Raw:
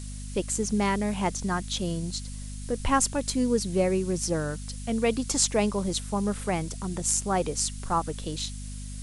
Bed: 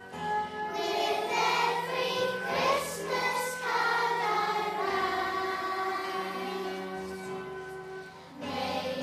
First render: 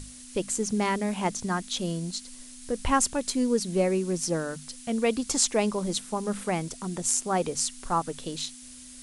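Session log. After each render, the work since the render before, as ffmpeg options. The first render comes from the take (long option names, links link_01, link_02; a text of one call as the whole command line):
ffmpeg -i in.wav -af "bandreject=frequency=50:width_type=h:width=6,bandreject=frequency=100:width_type=h:width=6,bandreject=frequency=150:width_type=h:width=6,bandreject=frequency=200:width_type=h:width=6" out.wav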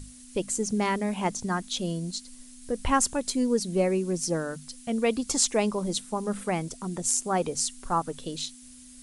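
ffmpeg -i in.wav -af "afftdn=noise_reduction=6:noise_floor=-46" out.wav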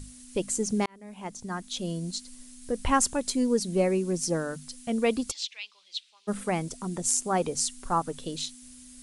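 ffmpeg -i in.wav -filter_complex "[0:a]asplit=3[link_01][link_02][link_03];[link_01]afade=type=out:start_time=5.3:duration=0.02[link_04];[link_02]asuperpass=centerf=3300:order=4:qfactor=1.7,afade=type=in:start_time=5.3:duration=0.02,afade=type=out:start_time=6.27:duration=0.02[link_05];[link_03]afade=type=in:start_time=6.27:duration=0.02[link_06];[link_04][link_05][link_06]amix=inputs=3:normalize=0,asplit=2[link_07][link_08];[link_07]atrim=end=0.86,asetpts=PTS-STARTPTS,afade=type=out:start_time=0.856:duration=0.004:curve=hsin[link_09];[link_08]atrim=start=0.86,asetpts=PTS-STARTPTS,afade=type=in:duration=1.29[link_10];[link_09][link_10]concat=n=2:v=0:a=1" out.wav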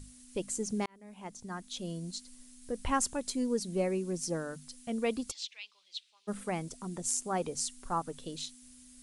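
ffmpeg -i in.wav -af "volume=-6.5dB" out.wav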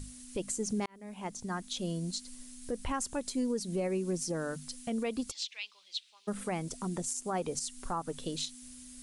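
ffmpeg -i in.wav -filter_complex "[0:a]asplit=2[link_01][link_02];[link_02]acompressor=threshold=-39dB:ratio=6,volume=-1dB[link_03];[link_01][link_03]amix=inputs=2:normalize=0,alimiter=level_in=0.5dB:limit=-24dB:level=0:latency=1:release=115,volume=-0.5dB" out.wav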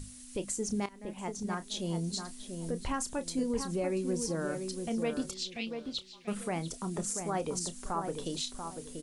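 ffmpeg -i in.wav -filter_complex "[0:a]asplit=2[link_01][link_02];[link_02]adelay=30,volume=-12.5dB[link_03];[link_01][link_03]amix=inputs=2:normalize=0,asplit=2[link_04][link_05];[link_05]adelay=688,lowpass=frequency=1600:poles=1,volume=-6dB,asplit=2[link_06][link_07];[link_07]adelay=688,lowpass=frequency=1600:poles=1,volume=0.27,asplit=2[link_08][link_09];[link_09]adelay=688,lowpass=frequency=1600:poles=1,volume=0.27[link_10];[link_04][link_06][link_08][link_10]amix=inputs=4:normalize=0" out.wav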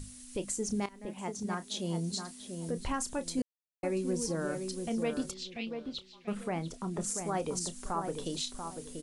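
ffmpeg -i in.wav -filter_complex "[0:a]asettb=1/sr,asplit=3[link_01][link_02][link_03];[link_01]atrim=end=1.074[link_04];[link_02]atrim=start=1.07:end=2.77,asetpts=PTS-STARTPTS,afade=type=in:duration=0.004:curve=qsin,afade=type=out:start_time=1.696:duration=0.004:curve=qsin,highpass=66[link_05];[link_03]atrim=start=2.766[link_06];[link_04][link_05]acrossfade=duration=0.004:curve1=hsin:curve2=qsin[link_07];[link_07][link_06]acrossfade=duration=0.004:curve1=qsin:curve2=hsin,asettb=1/sr,asplit=3[link_08][link_09][link_10];[link_08]atrim=end=5.324[link_11];[link_09]atrim=start=5.32:end=7.01,asetpts=PTS-STARTPTS,afade=type=in:duration=0.004:curve=qsin,afade=type=out:start_time=1.686:duration=0.004:curve=qsin,highshelf=frequency=5200:gain=-12[link_12];[link_10]atrim=start=7.006[link_13];[link_11][link_12]acrossfade=duration=0.004:curve1=hsin:curve2=qsin[link_14];[link_14][link_13]acrossfade=duration=0.004:curve1=qsin:curve2=hsin,asplit=3[link_15][link_16][link_17];[link_15]atrim=end=3.42,asetpts=PTS-STARTPTS,afade=type=out:start_time=3.416:duration=0.004:curve=hsin[link_18];[link_16]atrim=start=3.42:end=3.83,asetpts=PTS-STARTPTS,volume=0[link_19];[link_17]atrim=start=3.83,asetpts=PTS-STARTPTS,afade=type=in:duration=0.004:curve=hsin[link_20];[link_18][link_19][link_20]concat=n=3:v=0:a=1" out.wav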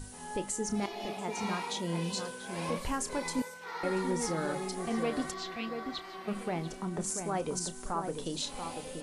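ffmpeg -i in.wav -i bed.wav -filter_complex "[1:a]volume=-11.5dB[link_01];[0:a][link_01]amix=inputs=2:normalize=0" out.wav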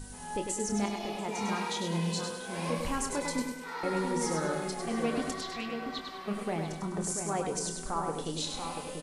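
ffmpeg -i in.wav -filter_complex "[0:a]asplit=2[link_01][link_02];[link_02]adelay=25,volume=-11dB[link_03];[link_01][link_03]amix=inputs=2:normalize=0,aecho=1:1:101|202|303|404|505:0.531|0.212|0.0849|0.034|0.0136" out.wav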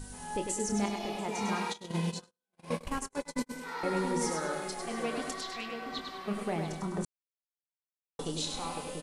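ffmpeg -i in.wav -filter_complex "[0:a]asplit=3[link_01][link_02][link_03];[link_01]afade=type=out:start_time=1.72:duration=0.02[link_04];[link_02]agate=range=-54dB:threshold=-32dB:ratio=16:release=100:detection=peak,afade=type=in:start_time=1.72:duration=0.02,afade=type=out:start_time=3.49:duration=0.02[link_05];[link_03]afade=type=in:start_time=3.49:duration=0.02[link_06];[link_04][link_05][link_06]amix=inputs=3:normalize=0,asettb=1/sr,asplit=3[link_07][link_08][link_09];[link_07]atrim=end=4.304[link_10];[link_08]atrim=start=4.3:end=5.91,asetpts=PTS-STARTPTS,afade=type=in:duration=0.004:curve=qsin,afade=type=out:start_time=1.606:duration=0.004:curve=qsin,equalizer=frequency=88:width=0.31:gain=-9.5[link_11];[link_09]atrim=start=5.906[link_12];[link_10][link_11]acrossfade=duration=0.004:curve1=hsin:curve2=qsin[link_13];[link_13][link_12]acrossfade=duration=0.004:curve1=qsin:curve2=hsin,asplit=3[link_14][link_15][link_16];[link_14]atrim=end=7.05,asetpts=PTS-STARTPTS,afade=type=out:start_time=7.046:duration=0.004:curve=hsin[link_17];[link_15]atrim=start=7.05:end=8.19,asetpts=PTS-STARTPTS,volume=0[link_18];[link_16]atrim=start=8.19,asetpts=PTS-STARTPTS,afade=type=in:duration=0.004:curve=hsin[link_19];[link_17][link_18][link_19]concat=n=3:v=0:a=1" out.wav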